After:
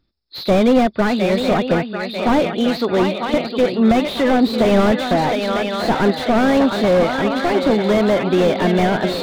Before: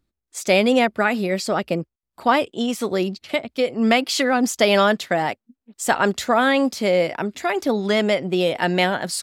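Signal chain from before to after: nonlinear frequency compression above 3400 Hz 4:1; swung echo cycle 0.944 s, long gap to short 3:1, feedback 54%, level -10 dB; slew limiter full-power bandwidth 86 Hz; gain +5 dB

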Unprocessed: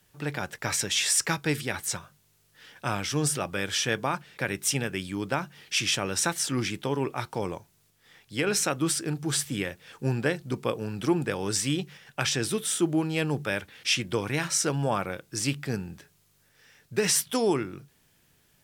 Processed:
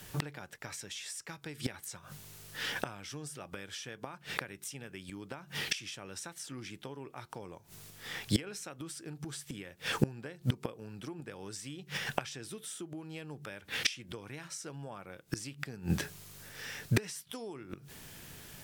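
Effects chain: compressor 16:1, threshold -29 dBFS, peak gain reduction 11.5 dB; flipped gate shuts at -29 dBFS, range -25 dB; gain +14.5 dB

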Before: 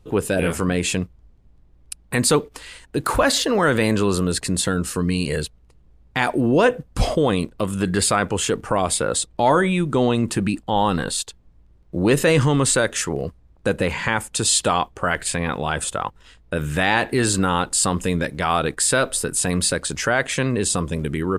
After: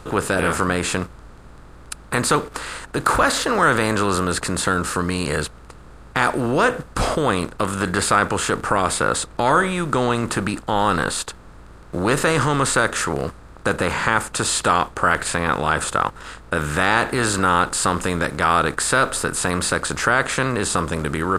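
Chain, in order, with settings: per-bin compression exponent 0.6; bell 1300 Hz +10 dB 0.66 oct; gain -6 dB

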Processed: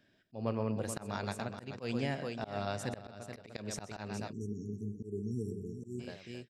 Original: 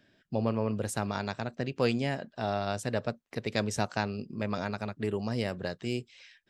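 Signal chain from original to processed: tapped delay 0.128/0.429/0.698 s -12/-9/-18 dB; spectral delete 4.32–6, 460–5500 Hz; auto swell 0.165 s; gain -4.5 dB

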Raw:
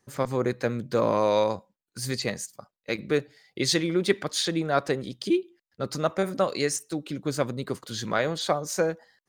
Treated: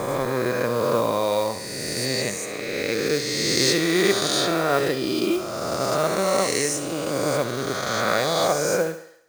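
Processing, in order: spectral swells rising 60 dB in 2.76 s; modulation noise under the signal 20 dB; thinning echo 69 ms, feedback 54%, high-pass 240 Hz, level -11.5 dB; gain -1.5 dB

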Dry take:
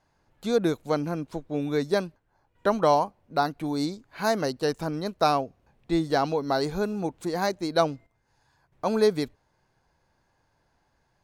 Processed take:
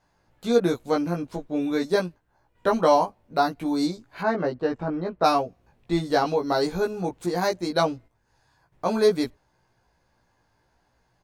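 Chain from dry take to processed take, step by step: 4.21–5.24 LPF 1900 Hz 12 dB/oct; doubler 17 ms -2 dB

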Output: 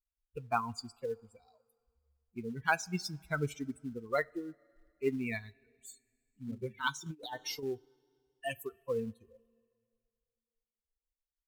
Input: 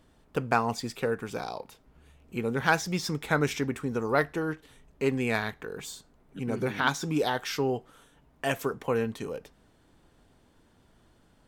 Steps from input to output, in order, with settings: per-bin expansion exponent 3; two-slope reverb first 0.22 s, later 2.3 s, from -20 dB, DRR 18 dB; in parallel at -8.5 dB: short-mantissa float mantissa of 2-bit; 7.06–7.63 on the sum: negative-ratio compressor -37 dBFS, ratio -0.5; gain -4 dB

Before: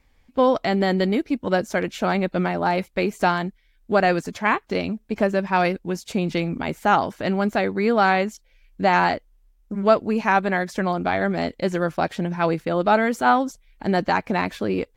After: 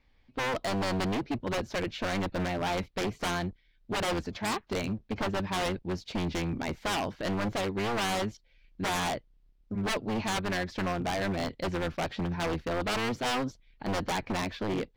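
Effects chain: octaver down 1 oct, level -5 dB; resonant high shelf 6200 Hz -13 dB, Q 1.5; wavefolder -18.5 dBFS; gain -6 dB

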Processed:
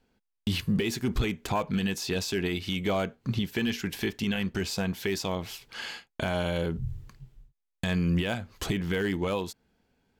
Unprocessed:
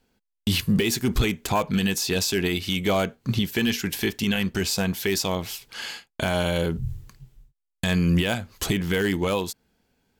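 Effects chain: high shelf 5500 Hz -9.5 dB; in parallel at -0.5 dB: compressor, threshold -31 dBFS, peak gain reduction 13.5 dB; on the sum: gain -7 dB

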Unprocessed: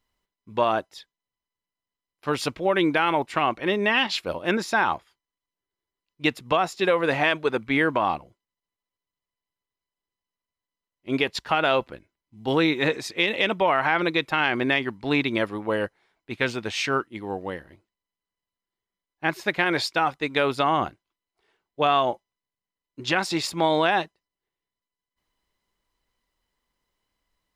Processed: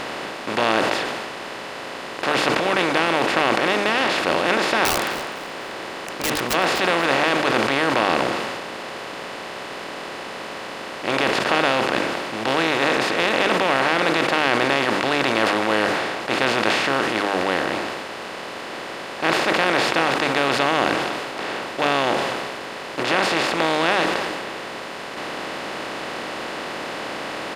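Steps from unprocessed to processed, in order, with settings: per-bin compression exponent 0.2; notches 50/100/150/200/250/300/350/400/450/500 Hz; 4.85–6.54 wrapped overs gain 7.5 dB; on a send: feedback echo 0.252 s, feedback 45%, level -16.5 dB; on the sum: sustainer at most 27 dB/s; gain -7.5 dB

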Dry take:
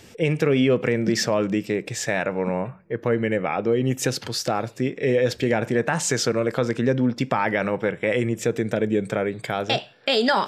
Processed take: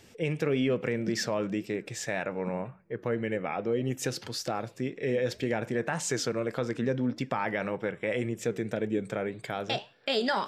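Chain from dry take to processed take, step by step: flange 1.8 Hz, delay 2.2 ms, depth 3.9 ms, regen +89%; gain -3.5 dB

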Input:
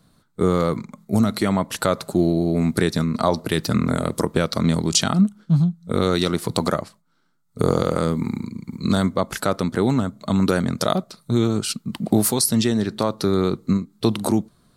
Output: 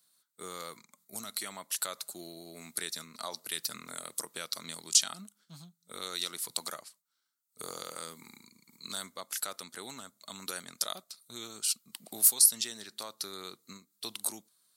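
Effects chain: differentiator; gain -2 dB

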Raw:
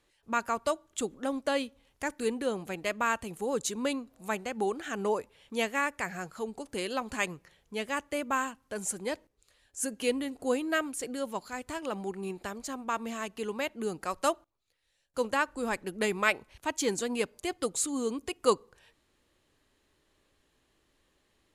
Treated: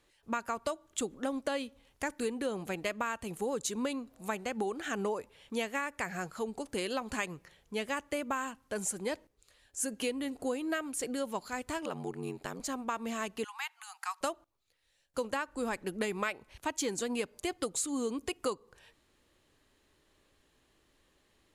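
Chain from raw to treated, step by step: compressor 12:1, threshold -31 dBFS, peak gain reduction 13.5 dB; 11.85–12.6 ring modulator 44 Hz; 13.44–14.21 steep high-pass 780 Hz 96 dB/oct; gain +1.5 dB

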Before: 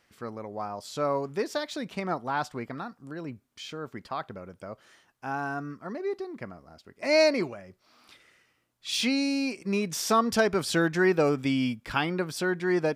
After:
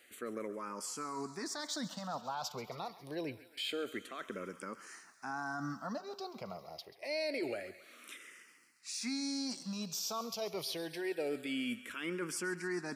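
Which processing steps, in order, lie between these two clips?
HPF 190 Hz 12 dB/oct; high shelf 3700 Hz +10 dB; reverse; compressor 12:1, threshold -34 dBFS, peak gain reduction 18.5 dB; reverse; limiter -30.5 dBFS, peak gain reduction 10.5 dB; thinning echo 0.135 s, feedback 73%, high-pass 600 Hz, level -15 dB; on a send at -23 dB: reverb RT60 0.60 s, pre-delay 64 ms; on the sum: endless phaser -0.26 Hz; gain +4 dB

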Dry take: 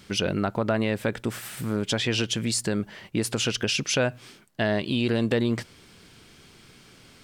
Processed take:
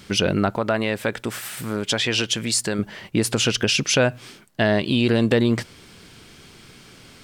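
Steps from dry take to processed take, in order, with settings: 0.56–2.79 low shelf 380 Hz -7.5 dB; gain +5.5 dB

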